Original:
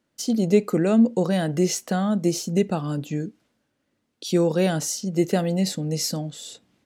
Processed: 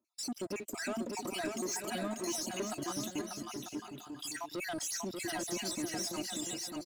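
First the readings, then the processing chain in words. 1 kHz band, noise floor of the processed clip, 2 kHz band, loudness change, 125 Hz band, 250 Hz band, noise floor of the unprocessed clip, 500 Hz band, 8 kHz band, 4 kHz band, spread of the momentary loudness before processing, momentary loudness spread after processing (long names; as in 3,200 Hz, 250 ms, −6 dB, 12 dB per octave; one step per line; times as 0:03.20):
−9.0 dB, −53 dBFS, −5.5 dB, −14.5 dB, −23.5 dB, −17.0 dB, −75 dBFS, −16.5 dB, −6.5 dB, −7.0 dB, 11 LU, 6 LU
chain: time-frequency cells dropped at random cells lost 56%
high-pass filter 100 Hz
dynamic equaliser 3,800 Hz, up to −3 dB, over −50 dBFS, Q 1.8
comb filter 3.1 ms, depth 89%
harmonic and percussive parts rebalanced harmonic −4 dB
high-shelf EQ 2,500 Hz +5.5 dB
leveller curve on the samples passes 2
downward compressor, threshold −19 dBFS, peak gain reduction 7.5 dB
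brickwall limiter −21.5 dBFS, peak gain reduction 9 dB
soft clipping −24.5 dBFS, distortion −18 dB
on a send: bouncing-ball delay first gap 590 ms, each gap 0.6×, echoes 5
on the sum: level −7.5 dB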